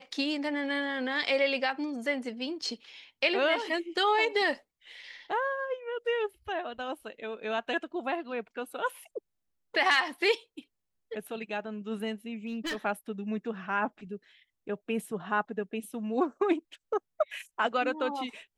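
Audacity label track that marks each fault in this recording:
12.460000	12.770000	clipped -30 dBFS

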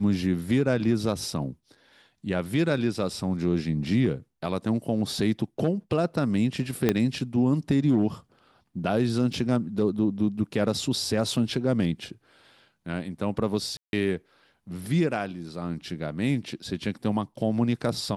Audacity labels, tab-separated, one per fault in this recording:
6.890000	6.890000	pop -8 dBFS
9.330000	9.330000	gap 4.4 ms
13.770000	13.930000	gap 0.161 s

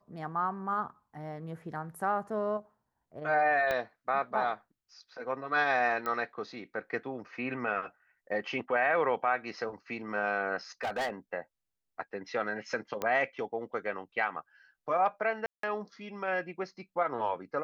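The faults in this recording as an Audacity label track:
3.710000	3.710000	pop -17 dBFS
6.060000	6.060000	pop -21 dBFS
10.830000	11.100000	clipped -29 dBFS
13.020000	13.020000	pop -18 dBFS
15.460000	15.630000	gap 0.173 s

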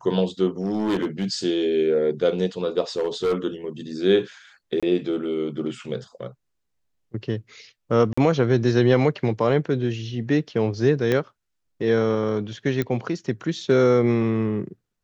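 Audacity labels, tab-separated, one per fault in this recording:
0.610000	1.250000	clipped -19 dBFS
2.970000	3.350000	clipped -18 dBFS
4.800000	4.830000	gap 26 ms
8.130000	8.180000	gap 45 ms
11.120000	11.120000	pop -10 dBFS
12.820000	12.820000	pop -12 dBFS

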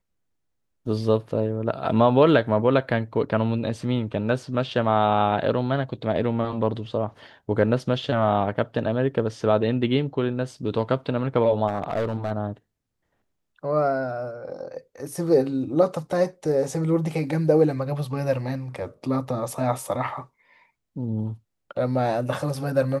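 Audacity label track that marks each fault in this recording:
11.670000	12.320000	clipped -20.5 dBFS

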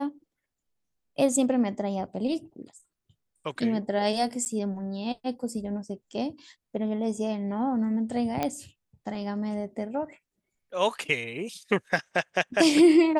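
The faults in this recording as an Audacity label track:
4.450000	4.460000	gap 9.4 ms
8.430000	8.430000	pop -13 dBFS

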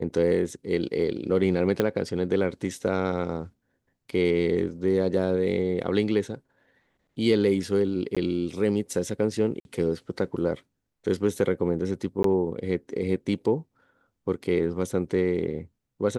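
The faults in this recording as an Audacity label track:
1.800000	1.800000	pop -10 dBFS
8.150000	8.170000	gap 16 ms
9.600000	9.650000	gap 51 ms
12.230000	12.240000	gap 13 ms

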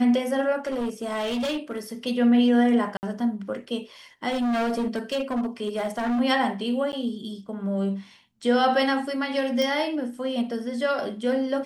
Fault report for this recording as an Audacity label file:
0.670000	1.790000	clipped -24 dBFS
2.970000	3.030000	gap 59 ms
4.280000	6.210000	clipped -22 dBFS
6.920000	6.930000	gap 9.6 ms
9.620000	9.620000	pop -14 dBFS

